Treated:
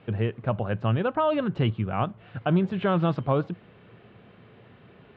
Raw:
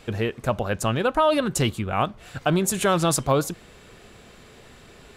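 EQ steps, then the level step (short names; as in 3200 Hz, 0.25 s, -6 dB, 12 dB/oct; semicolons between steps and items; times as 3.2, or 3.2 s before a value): air absorption 490 m; speaker cabinet 110–4700 Hz, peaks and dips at 110 Hz +10 dB, 180 Hz +5 dB, 3000 Hz +4 dB; -2.5 dB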